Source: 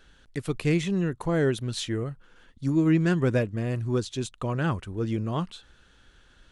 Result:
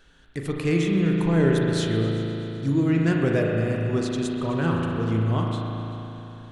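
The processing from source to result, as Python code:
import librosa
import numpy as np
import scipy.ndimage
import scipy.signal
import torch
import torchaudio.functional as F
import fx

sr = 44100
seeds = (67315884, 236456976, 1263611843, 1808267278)

p1 = x + fx.echo_heads(x, sr, ms=128, heads='all three', feedback_pct=47, wet_db=-22.0, dry=0)
y = fx.rev_spring(p1, sr, rt60_s=3.5, pass_ms=(36,), chirp_ms=30, drr_db=-1.0)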